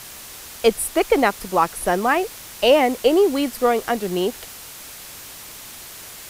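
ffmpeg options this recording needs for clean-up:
-af "afwtdn=0.014"

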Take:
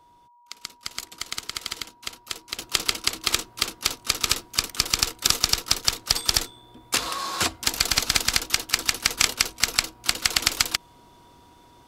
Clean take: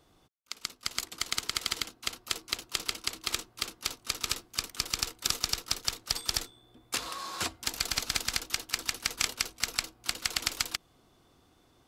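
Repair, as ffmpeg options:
-af "bandreject=f=960:w=30,asetnsamples=n=441:p=0,asendcmd='2.58 volume volume -9dB',volume=1"

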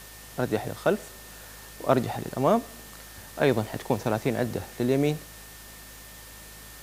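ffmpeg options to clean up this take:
-af "adeclick=t=4,bandreject=f=52.8:t=h:w=4,bandreject=f=105.6:t=h:w=4,bandreject=f=158.4:t=h:w=4,bandreject=f=211.2:t=h:w=4,bandreject=f=264:t=h:w=4,bandreject=f=1800:w=30,afwtdn=0.005"

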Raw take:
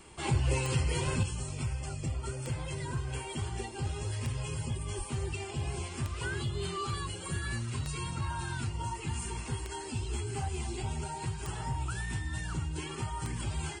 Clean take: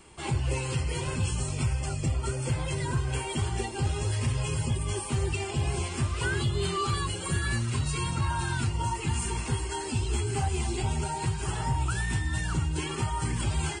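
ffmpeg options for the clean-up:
-filter_complex "[0:a]adeclick=t=4,asplit=3[s0][s1][s2];[s0]afade=t=out:st=4.97:d=0.02[s3];[s1]highpass=f=140:w=0.5412,highpass=f=140:w=1.3066,afade=t=in:st=4.97:d=0.02,afade=t=out:st=5.09:d=0.02[s4];[s2]afade=t=in:st=5.09:d=0.02[s5];[s3][s4][s5]amix=inputs=3:normalize=0,asetnsamples=n=441:p=0,asendcmd='1.23 volume volume 6.5dB',volume=1"

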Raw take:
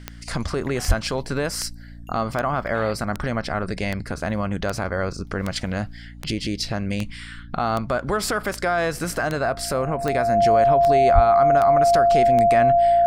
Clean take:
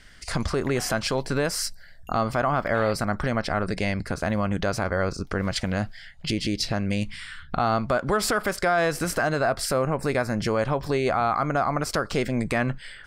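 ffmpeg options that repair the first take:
-filter_complex "[0:a]adeclick=t=4,bandreject=f=57.9:t=h:w=4,bandreject=f=115.8:t=h:w=4,bandreject=f=173.7:t=h:w=4,bandreject=f=231.6:t=h:w=4,bandreject=f=289.5:t=h:w=4,bandreject=f=690:w=30,asplit=3[s0][s1][s2];[s0]afade=t=out:st=0.87:d=0.02[s3];[s1]highpass=f=140:w=0.5412,highpass=f=140:w=1.3066,afade=t=in:st=0.87:d=0.02,afade=t=out:st=0.99:d=0.02[s4];[s2]afade=t=in:st=0.99:d=0.02[s5];[s3][s4][s5]amix=inputs=3:normalize=0,asplit=3[s6][s7][s8];[s6]afade=t=out:st=11.14:d=0.02[s9];[s7]highpass=f=140:w=0.5412,highpass=f=140:w=1.3066,afade=t=in:st=11.14:d=0.02,afade=t=out:st=11.26:d=0.02[s10];[s8]afade=t=in:st=11.26:d=0.02[s11];[s9][s10][s11]amix=inputs=3:normalize=0"

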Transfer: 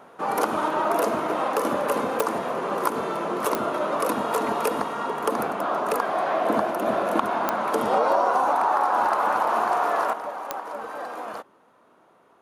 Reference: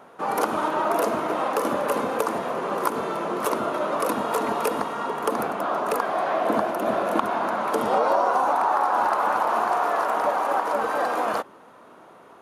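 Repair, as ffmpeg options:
-af "adeclick=t=4,asetnsamples=n=441:p=0,asendcmd='10.13 volume volume 9.5dB',volume=1"

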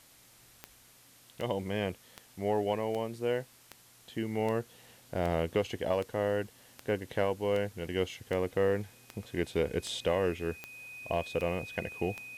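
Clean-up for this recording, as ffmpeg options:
-af "adeclick=t=4,bandreject=f=2500:w=30,afftdn=nr=18:nf=-59"

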